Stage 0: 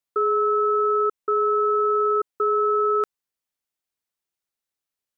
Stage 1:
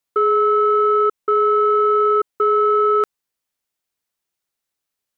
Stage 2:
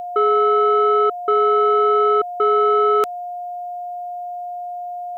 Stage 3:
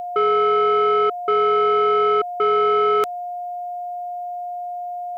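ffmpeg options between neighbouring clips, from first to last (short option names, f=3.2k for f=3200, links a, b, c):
-af "acontrast=81,volume=-1.5dB"
-af "aeval=exprs='val(0)+0.0501*sin(2*PI*710*n/s)':c=same,aexciter=amount=1.7:drive=8.3:freq=2.4k"
-af "asoftclip=type=tanh:threshold=-10.5dB"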